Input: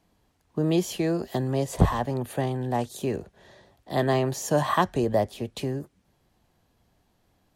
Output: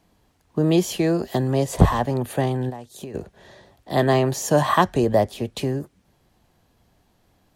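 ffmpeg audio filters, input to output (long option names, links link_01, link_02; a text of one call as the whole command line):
ffmpeg -i in.wav -filter_complex "[0:a]asplit=3[link_01][link_02][link_03];[link_01]afade=type=out:start_time=2.69:duration=0.02[link_04];[link_02]acompressor=threshold=-37dB:ratio=12,afade=type=in:start_time=2.69:duration=0.02,afade=type=out:start_time=3.14:duration=0.02[link_05];[link_03]afade=type=in:start_time=3.14:duration=0.02[link_06];[link_04][link_05][link_06]amix=inputs=3:normalize=0,volume=5dB" out.wav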